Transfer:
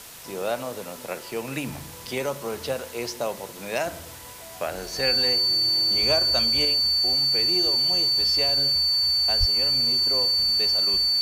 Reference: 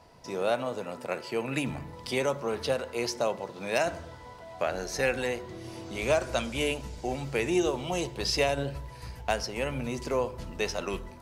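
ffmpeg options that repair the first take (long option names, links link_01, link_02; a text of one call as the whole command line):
ffmpeg -i in.wav -filter_complex "[0:a]bandreject=frequency=4500:width=30,asplit=3[link_01][link_02][link_03];[link_01]afade=type=out:start_time=9.39:duration=0.02[link_04];[link_02]highpass=frequency=140:width=0.5412,highpass=frequency=140:width=1.3066,afade=type=in:start_time=9.39:duration=0.02,afade=type=out:start_time=9.51:duration=0.02[link_05];[link_03]afade=type=in:start_time=9.51:duration=0.02[link_06];[link_04][link_05][link_06]amix=inputs=3:normalize=0,afwtdn=0.0079,asetnsamples=nb_out_samples=441:pad=0,asendcmd='6.65 volume volume 5dB',volume=0dB" out.wav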